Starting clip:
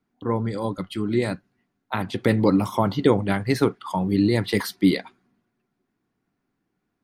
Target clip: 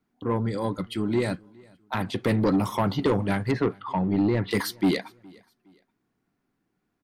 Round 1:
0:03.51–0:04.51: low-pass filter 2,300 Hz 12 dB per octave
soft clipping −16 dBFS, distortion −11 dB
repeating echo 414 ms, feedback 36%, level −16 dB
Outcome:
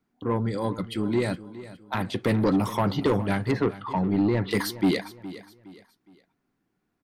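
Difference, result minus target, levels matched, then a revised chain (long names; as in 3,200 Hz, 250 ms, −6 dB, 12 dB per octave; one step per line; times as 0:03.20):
echo-to-direct +10.5 dB
0:03.51–0:04.51: low-pass filter 2,300 Hz 12 dB per octave
soft clipping −16 dBFS, distortion −11 dB
repeating echo 414 ms, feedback 36%, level −26.5 dB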